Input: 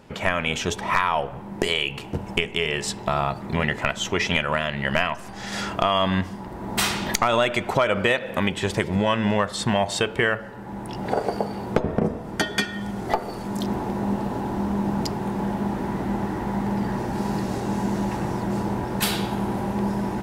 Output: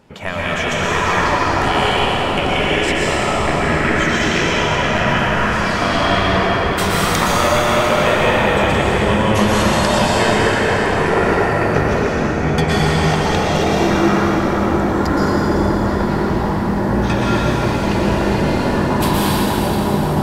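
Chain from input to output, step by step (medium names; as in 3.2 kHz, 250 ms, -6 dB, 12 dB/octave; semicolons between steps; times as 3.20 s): 11.83–12.47 s: two resonant band-passes 520 Hz, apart 2.3 oct; ever faster or slower copies 303 ms, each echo -5 st, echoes 3; plate-style reverb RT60 5 s, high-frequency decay 0.8×, pre-delay 105 ms, DRR -7.5 dB; trim -2 dB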